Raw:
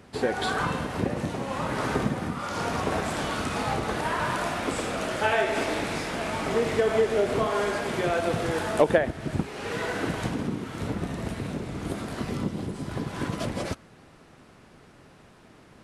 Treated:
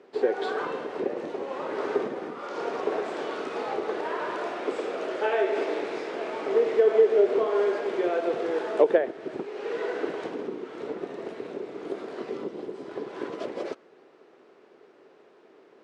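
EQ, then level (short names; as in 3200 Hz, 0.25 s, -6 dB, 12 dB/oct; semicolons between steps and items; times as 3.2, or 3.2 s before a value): resonant high-pass 400 Hz, resonance Q 3.8; air absorption 120 m; -5.5 dB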